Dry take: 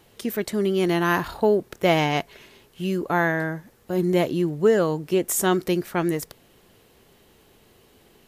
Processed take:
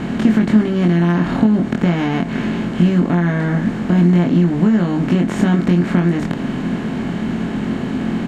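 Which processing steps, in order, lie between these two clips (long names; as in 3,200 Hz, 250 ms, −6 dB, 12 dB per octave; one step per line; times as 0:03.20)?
compressor on every frequency bin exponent 0.4
high-frequency loss of the air 160 metres
double-tracking delay 23 ms −2.5 dB
downward compressor 4 to 1, threshold −18 dBFS, peak gain reduction 9.5 dB
low shelf with overshoot 330 Hz +9.5 dB, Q 3
slew-rate limiting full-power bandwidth 340 Hz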